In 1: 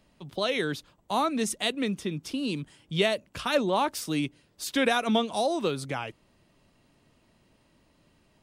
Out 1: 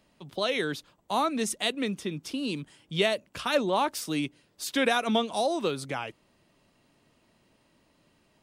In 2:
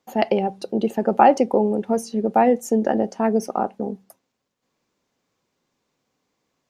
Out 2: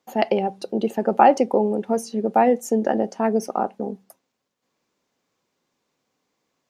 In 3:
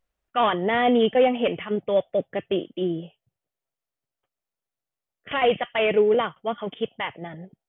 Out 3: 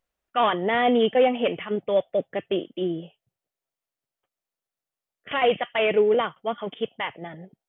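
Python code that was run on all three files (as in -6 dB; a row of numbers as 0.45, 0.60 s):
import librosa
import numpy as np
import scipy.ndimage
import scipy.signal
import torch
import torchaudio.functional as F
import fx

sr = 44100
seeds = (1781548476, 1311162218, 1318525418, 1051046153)

y = fx.low_shelf(x, sr, hz=120.0, db=-8.0)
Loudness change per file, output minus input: -0.5, -0.5, -0.5 LU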